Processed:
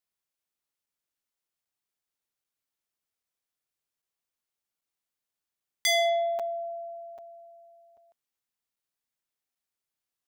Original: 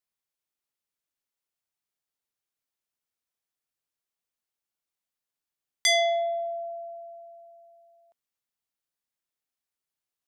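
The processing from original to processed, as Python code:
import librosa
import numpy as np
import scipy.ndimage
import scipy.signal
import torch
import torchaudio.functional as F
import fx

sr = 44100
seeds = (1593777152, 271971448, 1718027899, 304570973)

y = np.clip(10.0 ** (21.5 / 20.0) * x, -1.0, 1.0) / 10.0 ** (21.5 / 20.0)
y = fx.buffer_crackle(y, sr, first_s=0.86, period_s=0.79, block=256, kind='zero')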